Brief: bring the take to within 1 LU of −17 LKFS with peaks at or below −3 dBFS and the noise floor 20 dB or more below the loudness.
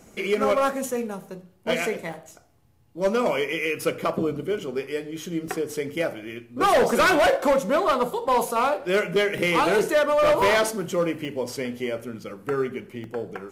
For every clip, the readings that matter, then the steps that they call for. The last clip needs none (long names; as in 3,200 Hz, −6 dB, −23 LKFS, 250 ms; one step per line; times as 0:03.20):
number of dropouts 6; longest dropout 1.4 ms; integrated loudness −23.5 LKFS; sample peak −12.0 dBFS; target loudness −17.0 LKFS
→ repair the gap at 0:02.13/0:05.48/0:09.38/0:10.42/0:11.25/0:13.04, 1.4 ms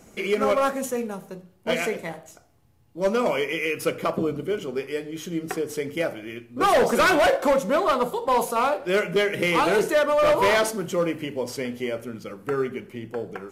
number of dropouts 0; integrated loudness −23.5 LKFS; sample peak −12.0 dBFS; target loudness −17.0 LKFS
→ level +6.5 dB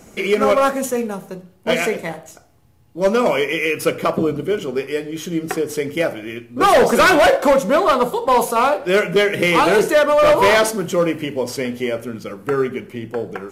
integrated loudness −17.0 LKFS; sample peak −5.5 dBFS; background noise floor −49 dBFS